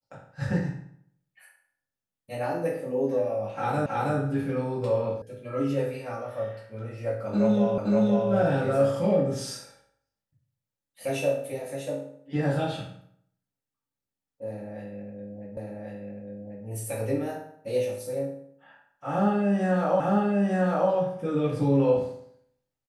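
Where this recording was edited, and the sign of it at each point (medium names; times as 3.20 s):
3.86 s: repeat of the last 0.32 s
5.22 s: sound stops dead
7.78 s: repeat of the last 0.52 s
15.57 s: repeat of the last 1.09 s
20.00 s: repeat of the last 0.9 s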